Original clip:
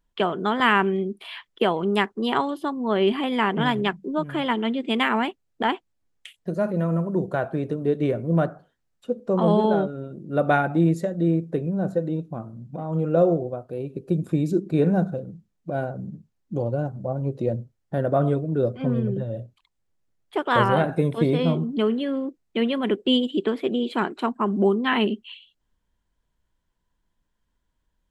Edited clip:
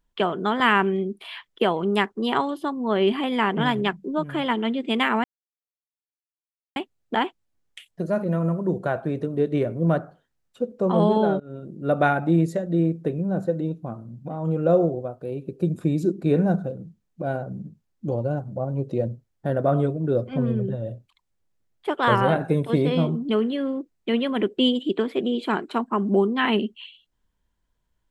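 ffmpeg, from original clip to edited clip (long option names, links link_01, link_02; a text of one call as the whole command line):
ffmpeg -i in.wav -filter_complex "[0:a]asplit=3[link_01][link_02][link_03];[link_01]atrim=end=5.24,asetpts=PTS-STARTPTS,afade=type=out:start_time=5.236:duration=0.004:curve=hsin,apad=pad_dur=1.52[link_04];[link_02]atrim=start=5.24:end=9.88,asetpts=PTS-STARTPTS,afade=type=in:duration=0.004:curve=hsin,afade=type=out:start_time=4.636:duration=0.004:curve=hsin:silence=0.0749894[link_05];[link_03]atrim=start=9.88,asetpts=PTS-STARTPTS,afade=type=in:duration=0.26:curve=qsin:silence=0.0749894[link_06];[link_04][link_05][link_06]concat=n=3:v=0:a=1" out.wav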